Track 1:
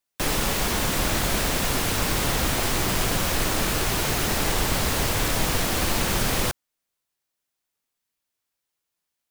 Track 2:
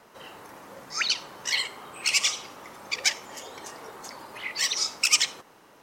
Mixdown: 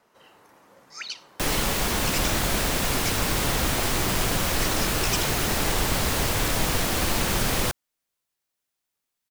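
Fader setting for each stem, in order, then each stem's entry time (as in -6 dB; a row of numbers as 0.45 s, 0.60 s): -0.5 dB, -9.5 dB; 1.20 s, 0.00 s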